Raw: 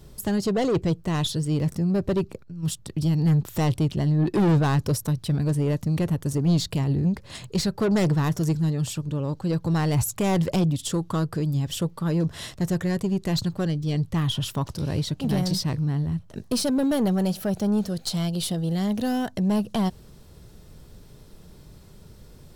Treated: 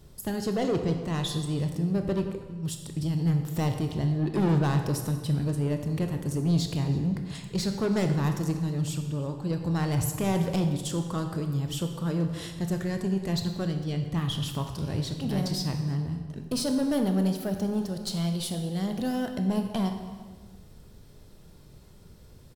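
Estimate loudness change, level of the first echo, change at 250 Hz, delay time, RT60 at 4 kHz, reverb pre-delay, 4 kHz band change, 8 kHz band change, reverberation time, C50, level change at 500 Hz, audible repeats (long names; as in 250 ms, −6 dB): −4.0 dB, −22.0 dB, −4.0 dB, 327 ms, 1.1 s, 21 ms, −4.0 dB, −4.0 dB, 1.5 s, 6.5 dB, −3.5 dB, 1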